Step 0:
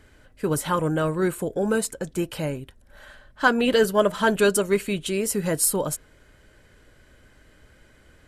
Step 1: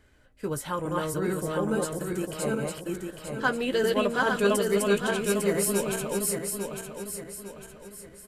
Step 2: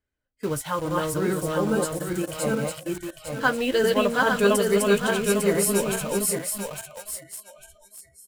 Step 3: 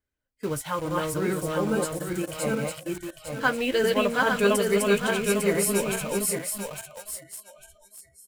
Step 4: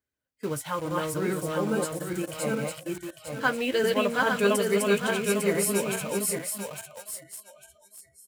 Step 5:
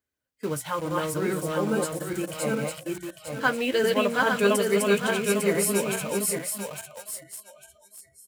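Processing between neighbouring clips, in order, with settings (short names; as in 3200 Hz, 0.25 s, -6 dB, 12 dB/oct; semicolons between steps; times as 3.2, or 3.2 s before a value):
regenerating reverse delay 0.426 s, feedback 62%, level -0.5 dB; doubler 15 ms -10.5 dB; gain -7.5 dB
spectral noise reduction 24 dB; in parallel at -5.5 dB: requantised 6-bit, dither none
dynamic EQ 2300 Hz, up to +6 dB, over -48 dBFS, Q 3.7; gain -2 dB
HPF 83 Hz 12 dB/oct; gain -1.5 dB
notches 60/120/180 Hz; gain +1.5 dB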